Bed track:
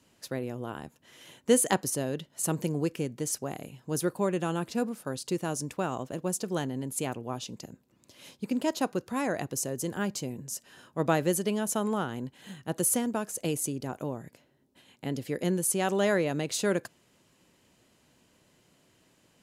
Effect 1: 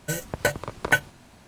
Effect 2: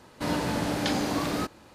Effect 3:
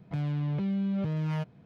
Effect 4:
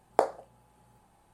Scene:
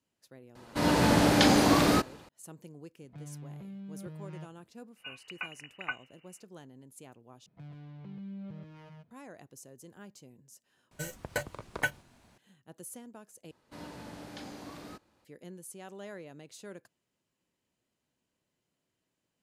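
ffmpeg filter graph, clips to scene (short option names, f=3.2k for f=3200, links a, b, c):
-filter_complex "[2:a]asplit=2[a][b];[3:a]asplit=2[c][d];[1:a]asplit=2[e][f];[0:a]volume=-19dB[g];[a]dynaudnorm=f=100:g=7:m=7dB[h];[e]lowpass=f=2.6k:t=q:w=0.5098,lowpass=f=2.6k:t=q:w=0.6013,lowpass=f=2.6k:t=q:w=0.9,lowpass=f=2.6k:t=q:w=2.563,afreqshift=-3000[i];[d]aecho=1:1:132:0.596[j];[g]asplit=4[k][l][m][n];[k]atrim=end=7.464[o];[j]atrim=end=1.65,asetpts=PTS-STARTPTS,volume=-16dB[p];[l]atrim=start=9.106:end=10.914[q];[f]atrim=end=1.47,asetpts=PTS-STARTPTS,volume=-10dB[r];[m]atrim=start=12.376:end=13.514[s];[b]atrim=end=1.74,asetpts=PTS-STARTPTS,volume=-17.5dB[t];[n]atrim=start=15.246[u];[h]atrim=end=1.74,asetpts=PTS-STARTPTS,volume=-1.5dB,afade=t=in:d=0.004:c=hsin,afade=t=out:st=1.736:d=0.004:c=hsin,adelay=550[v];[c]atrim=end=1.65,asetpts=PTS-STARTPTS,volume=-14.5dB,afade=t=in:d=0.004:c=hsin,afade=t=out:st=1.646:d=0.004:c=hsin,adelay=3020[w];[i]atrim=end=1.47,asetpts=PTS-STARTPTS,volume=-15.5dB,afade=t=in:d=0.004:c=hsin,afade=t=out:st=1.466:d=0.004:c=hsin,adelay=4960[x];[o][p]acrossfade=d=0.004:c1=hsin:c2=hsin[y];[y][q]acrossfade=d=0.004:c1=hsin:c2=hsin[z];[z][r]acrossfade=d=0.004:c1=hsin:c2=hsin[aa];[aa][s]acrossfade=d=0.004:c1=hsin:c2=hsin[ab];[ab][t]acrossfade=d=0.004:c1=hsin:c2=hsin[ac];[ac][u]acrossfade=d=0.004:c1=hsin:c2=hsin[ad];[ad][v][w][x]amix=inputs=4:normalize=0"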